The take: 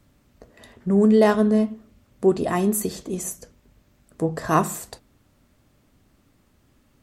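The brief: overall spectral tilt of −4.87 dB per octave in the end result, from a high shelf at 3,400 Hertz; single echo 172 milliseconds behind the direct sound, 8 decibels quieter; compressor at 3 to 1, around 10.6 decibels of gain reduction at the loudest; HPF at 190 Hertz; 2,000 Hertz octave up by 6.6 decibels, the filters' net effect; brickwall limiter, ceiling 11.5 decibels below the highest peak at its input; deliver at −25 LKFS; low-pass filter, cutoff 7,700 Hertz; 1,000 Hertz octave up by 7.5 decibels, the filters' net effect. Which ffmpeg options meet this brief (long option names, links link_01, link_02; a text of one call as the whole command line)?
ffmpeg -i in.wav -af "highpass=190,lowpass=7700,equalizer=frequency=1000:width_type=o:gain=8,equalizer=frequency=2000:width_type=o:gain=7,highshelf=frequency=3400:gain=-6.5,acompressor=threshold=-22dB:ratio=3,alimiter=limit=-20dB:level=0:latency=1,aecho=1:1:172:0.398,volume=6dB" out.wav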